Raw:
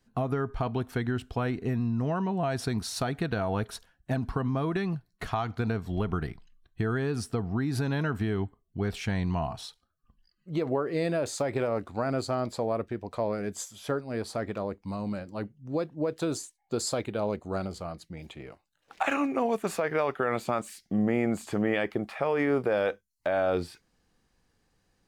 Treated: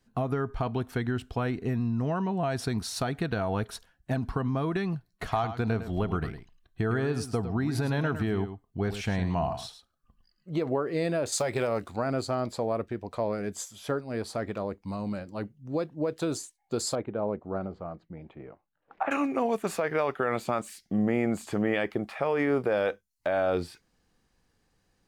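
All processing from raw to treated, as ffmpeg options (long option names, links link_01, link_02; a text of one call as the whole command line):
ffmpeg -i in.wav -filter_complex "[0:a]asettb=1/sr,asplit=3[link_01][link_02][link_03];[link_01]atrim=end=5.104[link_04];[link_02]atrim=start=5.1:end=10.59,asetpts=PTS-STARTPTS,afade=type=in:duration=0.004:curve=qsin,afade=type=out:start_time=5.486:duration=0.004:curve=qsin,equalizer=frequency=660:width=1.4:gain=3.5,aecho=1:1:107:0.299,atrim=end_sample=242109[link_05];[link_03]atrim=start=10.586[link_06];[link_04][link_05]acrossfade=duration=0.004:curve1=hsin:curve2=qsin[link_07];[link_07][link_06]acrossfade=duration=0.004:curve1=qsin:curve2=hsin,asettb=1/sr,asplit=3[link_08][link_09][link_10];[link_08]atrim=end=11.324[link_11];[link_09]atrim=start=11.32:end=11.96,asetpts=PTS-STARTPTS,afade=type=in:duration=0.004:curve=qsin,afade=type=out:start_time=0.636:duration=0.004:curve=qsin,highshelf=frequency=2600:gain=9,bandreject=frequency=280:width=8.7[link_12];[link_10]atrim=start=11.956[link_13];[link_11][link_12]acrossfade=duration=0.004:curve1=hsin:curve2=qsin[link_14];[link_14][link_13]acrossfade=duration=0.004:curve1=qsin:curve2=hsin,asettb=1/sr,asplit=3[link_15][link_16][link_17];[link_15]atrim=end=16.954[link_18];[link_16]atrim=start=16.95:end=19.11,asetpts=PTS-STARTPTS,afade=type=in:duration=0.004:curve=qsin,afade=type=out:start_time=2.156:duration=0.004:curve=qsin,lowpass=1300,equalizer=frequency=63:width=0.97:gain=-6.5[link_19];[link_17]atrim=start=19.106[link_20];[link_18][link_19]acrossfade=duration=0.004:curve1=hsin:curve2=qsin[link_21];[link_21][link_20]acrossfade=duration=0.004:curve1=qsin:curve2=hsin" out.wav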